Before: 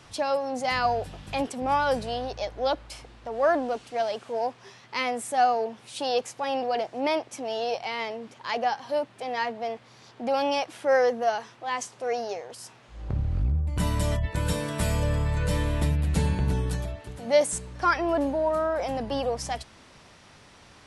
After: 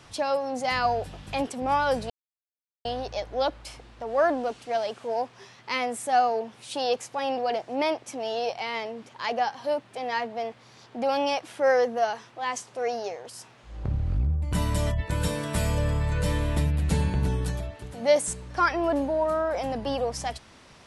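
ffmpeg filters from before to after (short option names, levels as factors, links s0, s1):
-filter_complex "[0:a]asplit=2[s0][s1];[s0]atrim=end=2.1,asetpts=PTS-STARTPTS,afade=t=out:st=2.096:d=0.004:c=hsin,apad=pad_dur=0.75[s2];[s1]atrim=start=2.1,asetpts=PTS-STARTPTS,afade=t=in:d=0.004:c=hsin[s3];[s2][s3]concat=n=2:v=0:a=1"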